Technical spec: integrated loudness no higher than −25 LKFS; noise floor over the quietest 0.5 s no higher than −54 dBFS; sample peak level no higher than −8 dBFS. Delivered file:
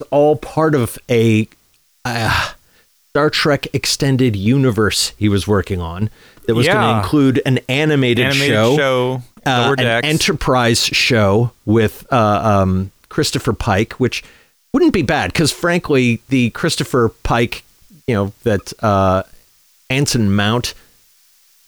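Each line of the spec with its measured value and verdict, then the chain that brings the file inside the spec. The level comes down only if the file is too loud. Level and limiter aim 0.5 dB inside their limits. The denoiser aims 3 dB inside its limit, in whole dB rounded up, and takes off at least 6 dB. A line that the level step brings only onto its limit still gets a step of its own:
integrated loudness −15.5 LKFS: out of spec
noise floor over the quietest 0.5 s −57 dBFS: in spec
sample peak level −4.5 dBFS: out of spec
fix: level −10 dB

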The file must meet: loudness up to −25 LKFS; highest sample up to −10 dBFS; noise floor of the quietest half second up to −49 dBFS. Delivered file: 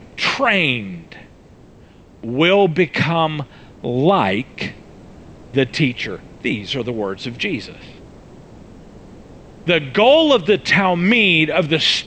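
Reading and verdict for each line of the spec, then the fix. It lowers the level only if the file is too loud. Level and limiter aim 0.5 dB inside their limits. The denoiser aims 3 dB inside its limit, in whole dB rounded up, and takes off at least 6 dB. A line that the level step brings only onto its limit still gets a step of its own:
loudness −17.0 LKFS: out of spec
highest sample −2.5 dBFS: out of spec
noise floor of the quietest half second −45 dBFS: out of spec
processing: level −8.5 dB

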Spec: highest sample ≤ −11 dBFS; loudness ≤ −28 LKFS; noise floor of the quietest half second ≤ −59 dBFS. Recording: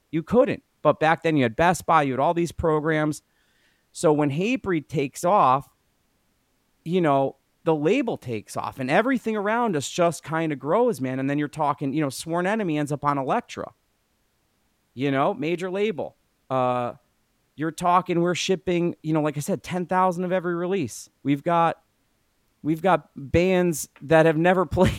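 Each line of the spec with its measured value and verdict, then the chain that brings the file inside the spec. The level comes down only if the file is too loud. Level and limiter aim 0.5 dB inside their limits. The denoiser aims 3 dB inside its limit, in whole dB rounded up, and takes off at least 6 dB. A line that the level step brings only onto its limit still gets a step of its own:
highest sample −5.0 dBFS: out of spec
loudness −23.5 LKFS: out of spec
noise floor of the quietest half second −69 dBFS: in spec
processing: level −5 dB
brickwall limiter −11.5 dBFS

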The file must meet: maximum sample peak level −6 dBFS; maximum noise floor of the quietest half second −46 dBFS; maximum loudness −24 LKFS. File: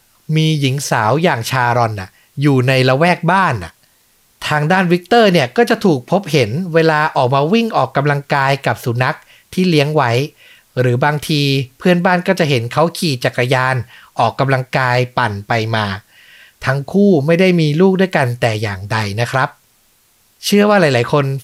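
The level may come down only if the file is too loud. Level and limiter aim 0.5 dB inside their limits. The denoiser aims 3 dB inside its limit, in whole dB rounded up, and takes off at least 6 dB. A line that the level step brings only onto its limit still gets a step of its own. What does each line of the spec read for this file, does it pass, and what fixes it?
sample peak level −2.0 dBFS: out of spec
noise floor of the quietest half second −55 dBFS: in spec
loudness −14.5 LKFS: out of spec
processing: level −10 dB

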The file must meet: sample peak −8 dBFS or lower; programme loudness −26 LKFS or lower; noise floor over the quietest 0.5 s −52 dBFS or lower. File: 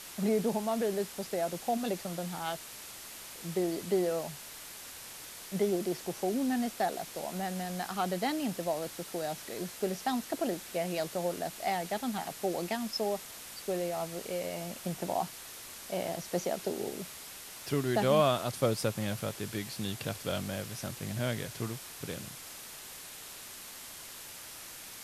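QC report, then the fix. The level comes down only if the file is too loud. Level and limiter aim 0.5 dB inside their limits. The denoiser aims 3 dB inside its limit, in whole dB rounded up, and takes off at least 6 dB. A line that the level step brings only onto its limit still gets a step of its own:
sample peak −13.0 dBFS: in spec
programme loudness −34.5 LKFS: in spec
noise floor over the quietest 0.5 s −47 dBFS: out of spec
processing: broadband denoise 8 dB, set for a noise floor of −47 dBFS

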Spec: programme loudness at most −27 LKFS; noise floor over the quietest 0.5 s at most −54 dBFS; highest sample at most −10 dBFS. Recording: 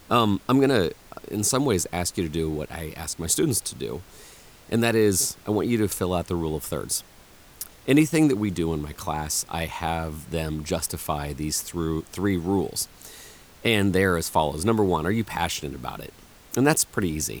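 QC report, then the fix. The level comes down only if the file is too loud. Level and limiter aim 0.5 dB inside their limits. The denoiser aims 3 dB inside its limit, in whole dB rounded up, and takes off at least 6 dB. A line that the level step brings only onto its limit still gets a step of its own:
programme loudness −25.0 LKFS: out of spec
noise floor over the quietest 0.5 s −50 dBFS: out of spec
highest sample −5.5 dBFS: out of spec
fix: broadband denoise 6 dB, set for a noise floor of −50 dBFS
level −2.5 dB
brickwall limiter −10.5 dBFS

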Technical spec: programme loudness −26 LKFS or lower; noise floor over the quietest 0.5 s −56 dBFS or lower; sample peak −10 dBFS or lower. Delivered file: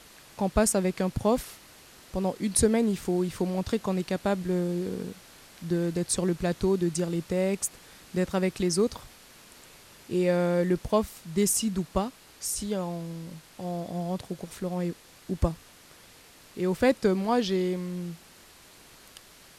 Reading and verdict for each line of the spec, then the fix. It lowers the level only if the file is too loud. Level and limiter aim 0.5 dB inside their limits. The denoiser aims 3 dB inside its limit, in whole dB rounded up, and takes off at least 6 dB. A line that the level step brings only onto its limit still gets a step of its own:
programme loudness −28.0 LKFS: in spec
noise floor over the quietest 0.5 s −53 dBFS: out of spec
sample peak −9.5 dBFS: out of spec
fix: broadband denoise 6 dB, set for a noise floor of −53 dBFS
brickwall limiter −10.5 dBFS

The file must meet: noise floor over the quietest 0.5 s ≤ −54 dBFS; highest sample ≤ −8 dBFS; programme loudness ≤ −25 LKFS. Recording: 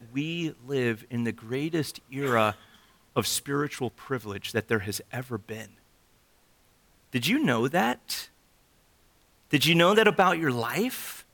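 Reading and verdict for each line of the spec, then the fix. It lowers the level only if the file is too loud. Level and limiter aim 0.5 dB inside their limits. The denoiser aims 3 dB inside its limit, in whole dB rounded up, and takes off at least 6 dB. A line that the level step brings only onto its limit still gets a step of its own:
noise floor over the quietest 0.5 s −63 dBFS: in spec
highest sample −7.0 dBFS: out of spec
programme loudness −27.0 LKFS: in spec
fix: brickwall limiter −8.5 dBFS

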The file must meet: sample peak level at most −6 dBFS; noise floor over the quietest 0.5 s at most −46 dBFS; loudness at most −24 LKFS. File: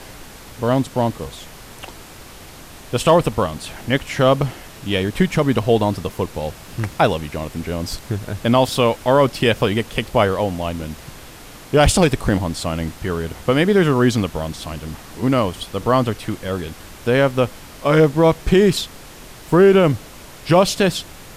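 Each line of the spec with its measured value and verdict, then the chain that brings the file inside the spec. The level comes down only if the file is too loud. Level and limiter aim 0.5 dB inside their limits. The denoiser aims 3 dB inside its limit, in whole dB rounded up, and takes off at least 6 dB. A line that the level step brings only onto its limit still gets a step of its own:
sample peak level −3.0 dBFS: out of spec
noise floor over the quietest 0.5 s −39 dBFS: out of spec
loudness −18.5 LKFS: out of spec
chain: broadband denoise 6 dB, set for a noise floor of −39 dBFS
level −6 dB

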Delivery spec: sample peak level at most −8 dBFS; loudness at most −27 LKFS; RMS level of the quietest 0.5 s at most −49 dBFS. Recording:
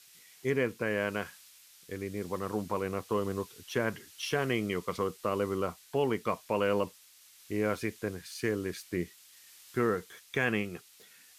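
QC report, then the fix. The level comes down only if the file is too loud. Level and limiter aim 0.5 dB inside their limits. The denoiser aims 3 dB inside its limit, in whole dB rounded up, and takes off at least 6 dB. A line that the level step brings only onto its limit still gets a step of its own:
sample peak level −16.0 dBFS: in spec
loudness −33.0 LKFS: in spec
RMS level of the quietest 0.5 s −58 dBFS: in spec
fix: no processing needed

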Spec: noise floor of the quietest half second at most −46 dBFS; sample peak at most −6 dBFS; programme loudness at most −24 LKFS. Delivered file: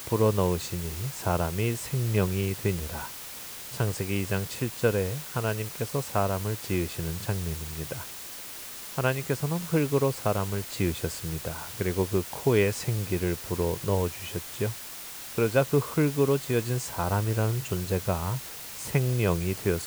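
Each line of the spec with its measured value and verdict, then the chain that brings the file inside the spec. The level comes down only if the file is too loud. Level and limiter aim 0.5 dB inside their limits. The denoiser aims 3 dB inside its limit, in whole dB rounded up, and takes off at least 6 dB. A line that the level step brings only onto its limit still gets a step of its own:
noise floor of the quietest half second −41 dBFS: out of spec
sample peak −10.5 dBFS: in spec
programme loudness −28.5 LKFS: in spec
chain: broadband denoise 8 dB, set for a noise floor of −41 dBFS

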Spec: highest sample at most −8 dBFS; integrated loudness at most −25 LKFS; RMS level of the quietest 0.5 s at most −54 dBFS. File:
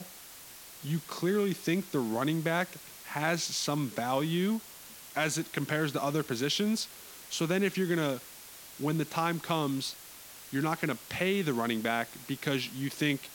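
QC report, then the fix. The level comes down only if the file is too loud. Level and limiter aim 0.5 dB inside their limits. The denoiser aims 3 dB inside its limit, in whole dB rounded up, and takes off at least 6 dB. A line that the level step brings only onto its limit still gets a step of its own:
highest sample −14.5 dBFS: in spec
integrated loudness −31.5 LKFS: in spec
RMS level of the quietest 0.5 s −49 dBFS: out of spec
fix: broadband denoise 8 dB, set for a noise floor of −49 dBFS

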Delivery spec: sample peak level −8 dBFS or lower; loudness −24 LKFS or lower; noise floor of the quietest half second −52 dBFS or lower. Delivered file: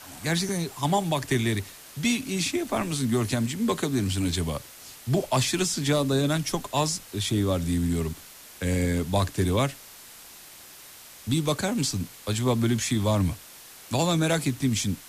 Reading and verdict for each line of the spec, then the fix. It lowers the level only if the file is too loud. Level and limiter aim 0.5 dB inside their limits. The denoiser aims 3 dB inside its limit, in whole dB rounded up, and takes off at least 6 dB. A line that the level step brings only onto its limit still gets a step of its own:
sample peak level −13.0 dBFS: in spec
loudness −26.5 LKFS: in spec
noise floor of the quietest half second −47 dBFS: out of spec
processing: broadband denoise 8 dB, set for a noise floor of −47 dBFS

